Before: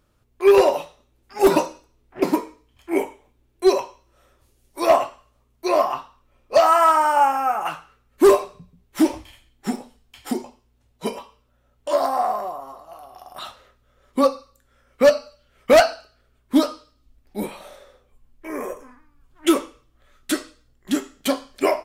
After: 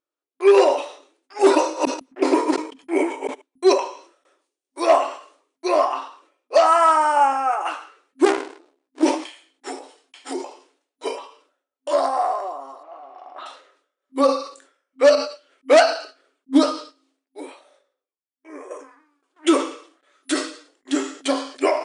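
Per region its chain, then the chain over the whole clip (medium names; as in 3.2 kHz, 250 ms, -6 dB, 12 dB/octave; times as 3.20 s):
1.57–3.70 s: chunks repeated in reverse 142 ms, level -1 dB + gate -45 dBFS, range -37 dB + careless resampling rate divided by 2×, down filtered, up zero stuff
8.25–9.03 s: bass shelf 170 Hz -6.5 dB + AM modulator 71 Hz, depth 50% + sliding maximum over 65 samples
12.83–13.46 s: jump at every zero crossing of -50 dBFS + low-pass 2 kHz
15.15–18.71 s: peaking EQ 230 Hz +9 dB 0.35 oct + upward expansion, over -36 dBFS
whole clip: gate with hold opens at -47 dBFS; FFT band-pass 260–10000 Hz; decay stretcher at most 110 dB/s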